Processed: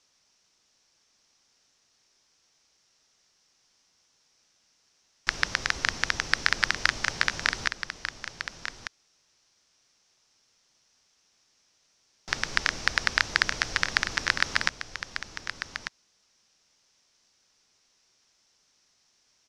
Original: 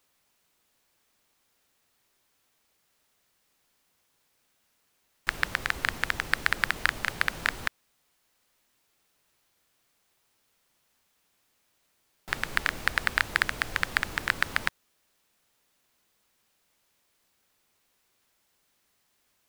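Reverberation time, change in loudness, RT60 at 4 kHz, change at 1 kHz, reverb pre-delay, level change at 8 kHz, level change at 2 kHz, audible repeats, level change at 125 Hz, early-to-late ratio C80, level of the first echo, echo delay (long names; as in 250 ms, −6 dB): no reverb audible, +0.5 dB, no reverb audible, +1.0 dB, no reverb audible, +6.0 dB, +1.5 dB, 1, +0.5 dB, no reverb audible, −9.5 dB, 1,195 ms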